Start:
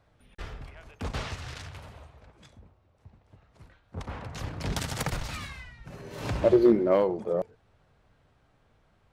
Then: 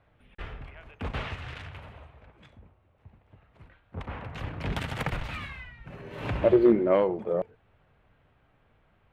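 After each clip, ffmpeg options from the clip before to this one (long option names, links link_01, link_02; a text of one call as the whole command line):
ffmpeg -i in.wav -af "highshelf=frequency=3900:width_type=q:width=1.5:gain=-11.5" out.wav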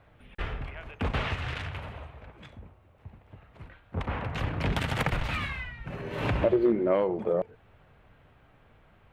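ffmpeg -i in.wav -af "acompressor=threshold=-31dB:ratio=2.5,volume=6dB" out.wav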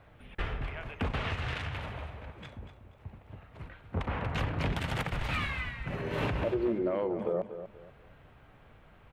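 ffmpeg -i in.wav -af "alimiter=limit=-23.5dB:level=0:latency=1:release=430,aecho=1:1:241|482|723:0.282|0.0761|0.0205,volume=1.5dB" out.wav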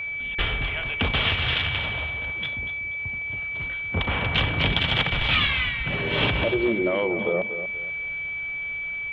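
ffmpeg -i in.wav -af "lowpass=frequency=3300:width_type=q:width=6.5,aeval=exprs='val(0)+0.02*sin(2*PI*2300*n/s)':channel_layout=same,volume=6dB" out.wav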